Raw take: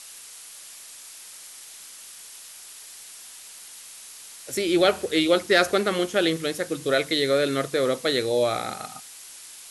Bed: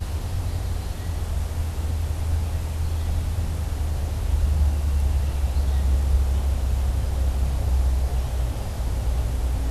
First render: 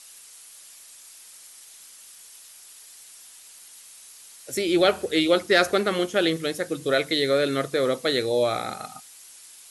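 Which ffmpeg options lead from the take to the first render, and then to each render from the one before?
-af "afftdn=nr=6:nf=-44"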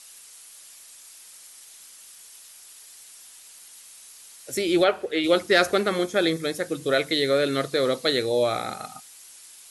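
-filter_complex "[0:a]asplit=3[s0][s1][s2];[s0]afade=t=out:st=4.83:d=0.02[s3];[s1]bass=f=250:g=-12,treble=f=4000:g=-13,afade=t=in:st=4.83:d=0.02,afade=t=out:st=5.23:d=0.02[s4];[s2]afade=t=in:st=5.23:d=0.02[s5];[s3][s4][s5]amix=inputs=3:normalize=0,asettb=1/sr,asplit=3[s6][s7][s8];[s6]atrim=end=5.894[s9];[s7]atrim=start=5.89:end=6.56,asetpts=PTS-STARTPTS,afade=t=in:d=0.004:c=qsin,afade=t=out:st=0.666:d=0.004:c=qsin,asuperstop=centerf=2900:order=4:qfactor=5.8[s10];[s8]atrim=start=6.556[s11];[s9][s10]acrossfade=d=0.004:c1=hsin:c2=qsin[s12];[s12][s11]acrossfade=d=0.004:c1=qsin:c2=hsin,asettb=1/sr,asplit=3[s13][s14][s15];[s13]atrim=end=7.544[s16];[s14]atrim=start=7.54:end=8.1,asetpts=PTS-STARTPTS,afade=t=in:d=0.004:c=qsin,afade=t=out:st=0.556:d=0.004:c=qsin,equalizer=f=4200:t=o:w=0.41:g=6.5[s17];[s15]atrim=start=8.096[s18];[s16][s17]acrossfade=d=0.004:c1=hsin:c2=qsin[s19];[s19][s18]acrossfade=d=0.004:c1=qsin:c2=hsin"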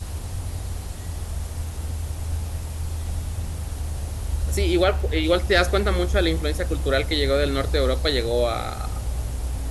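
-filter_complex "[1:a]volume=0.668[s0];[0:a][s0]amix=inputs=2:normalize=0"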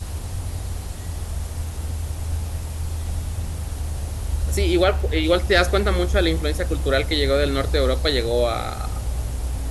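-af "volume=1.19"

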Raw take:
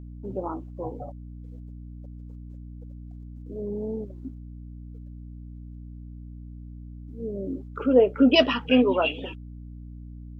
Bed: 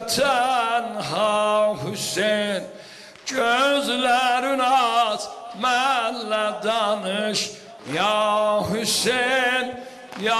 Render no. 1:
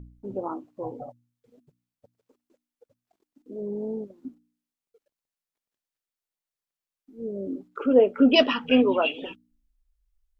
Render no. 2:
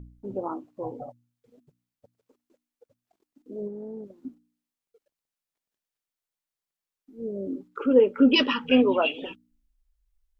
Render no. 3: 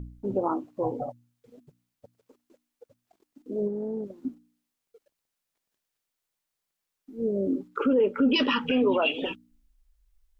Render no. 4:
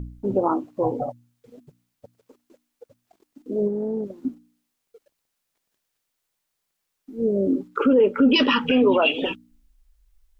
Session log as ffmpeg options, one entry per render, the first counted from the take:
-af "bandreject=f=60:t=h:w=4,bandreject=f=120:t=h:w=4,bandreject=f=180:t=h:w=4,bandreject=f=240:t=h:w=4,bandreject=f=300:t=h:w=4"
-filter_complex "[0:a]asplit=3[s0][s1][s2];[s0]afade=t=out:st=3.67:d=0.02[s3];[s1]acompressor=threshold=0.02:ratio=6:attack=3.2:release=140:knee=1:detection=peak,afade=t=in:st=3.67:d=0.02,afade=t=out:st=4.18:d=0.02[s4];[s2]afade=t=in:st=4.18:d=0.02[s5];[s3][s4][s5]amix=inputs=3:normalize=0,asettb=1/sr,asplit=3[s6][s7][s8];[s6]atrim=end=7.554[s9];[s7]atrim=start=7.55:end=8.72,asetpts=PTS-STARTPTS,afade=t=in:d=0.004:c=qsin,afade=t=out:st=1.166:d=0.004:c=qsin,asuperstop=centerf=680:order=4:qfactor=3.3[s10];[s8]atrim=start=8.716[s11];[s9][s10]acrossfade=d=0.004:c1=hsin:c2=qsin[s12];[s12][s11]acrossfade=d=0.004:c1=qsin:c2=hsin"
-filter_complex "[0:a]asplit=2[s0][s1];[s1]acompressor=threshold=0.0447:ratio=6,volume=0.944[s2];[s0][s2]amix=inputs=2:normalize=0,alimiter=limit=0.168:level=0:latency=1:release=24"
-af "volume=1.88"

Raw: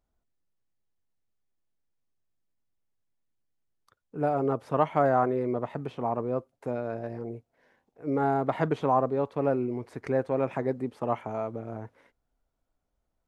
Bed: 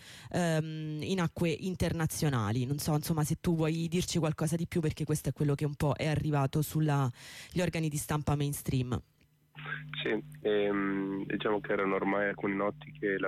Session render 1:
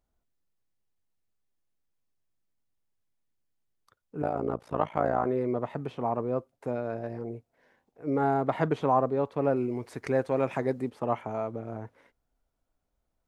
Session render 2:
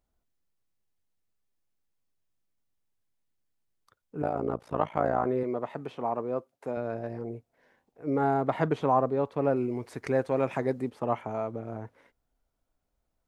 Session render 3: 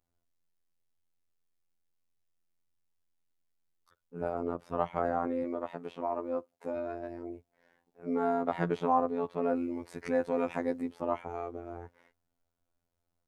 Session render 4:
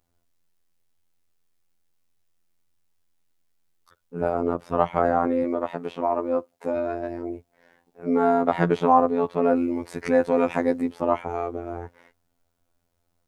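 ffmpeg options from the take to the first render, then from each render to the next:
-filter_complex "[0:a]asettb=1/sr,asplit=3[s0][s1][s2];[s0]atrim=end=4.224[s3];[s1]atrim=start=4.22:end=5.26,asetpts=PTS-STARTPTS,afade=t=in:d=0.004:c=qsin,afade=t=out:st=1.036:d=0.004:c=qsin,tremolo=f=57:d=0.919[s4];[s2]atrim=start=5.256[s5];[s3][s4]acrossfade=d=0.004:c1=hsin:c2=qsin[s6];[s6][s5]acrossfade=d=0.004:c1=qsin:c2=hsin,asettb=1/sr,asplit=3[s7][s8][s9];[s7]atrim=end=9.564[s10];[s8]atrim=start=9.56:end=10.9,asetpts=PTS-STARTPTS,afade=t=in:d=0.004:c=qsin,afade=t=out:st=1.336:d=0.004:c=qsin,highshelf=f=2700:g=8.5[s11];[s9]atrim=start=10.896[s12];[s10][s11]acrossfade=d=0.004:c1=hsin:c2=qsin[s13];[s13][s12]acrossfade=d=0.004:c1=qsin:c2=hsin"
-filter_complex "[0:a]asettb=1/sr,asplit=3[s0][s1][s2];[s0]atrim=end=5.434[s3];[s1]atrim=start=5.43:end=6.77,asetpts=PTS-STARTPTS,afade=t=in:d=0.004:c=qsin,afade=t=out:st=1.336:d=0.004:c=qsin,highpass=f=270:p=1[s4];[s2]atrim=start=6.766[s5];[s3][s4]acrossfade=d=0.004:c1=hsin:c2=qsin[s6];[s6][s5]acrossfade=d=0.004:c1=qsin:c2=hsin"
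-af "afftfilt=real='hypot(re,im)*cos(PI*b)':imag='0':win_size=2048:overlap=0.75"
-af "volume=2.99"

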